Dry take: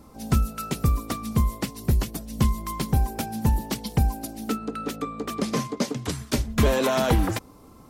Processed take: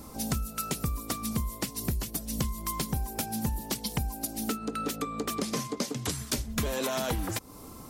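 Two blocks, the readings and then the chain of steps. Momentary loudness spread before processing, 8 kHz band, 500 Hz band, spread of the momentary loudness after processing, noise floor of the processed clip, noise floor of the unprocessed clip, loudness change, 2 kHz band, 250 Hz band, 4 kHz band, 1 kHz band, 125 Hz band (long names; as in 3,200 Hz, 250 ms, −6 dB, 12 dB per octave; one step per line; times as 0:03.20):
9 LU, +1.5 dB, −7.5 dB, 3 LU, −46 dBFS, −49 dBFS, −6.0 dB, −5.0 dB, −6.5 dB, −2.0 dB, −6.0 dB, −9.5 dB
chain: high-shelf EQ 4,300 Hz +10 dB
downward compressor 5 to 1, threshold −32 dBFS, peak gain reduction 15.5 dB
level +3 dB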